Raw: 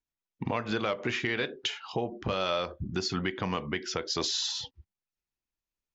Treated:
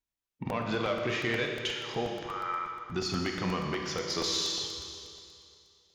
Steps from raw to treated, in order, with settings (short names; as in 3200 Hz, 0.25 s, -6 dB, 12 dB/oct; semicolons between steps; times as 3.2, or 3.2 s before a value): one diode to ground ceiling -16.5 dBFS; 2.26–2.9 brick-wall FIR band-pass 800–2400 Hz; Schroeder reverb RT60 2.5 s, combs from 27 ms, DRR 3.5 dB; harmonic-percussive split harmonic +5 dB; crackling interface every 0.12 s, samples 64, repeat, from 0.38; gain -3.5 dB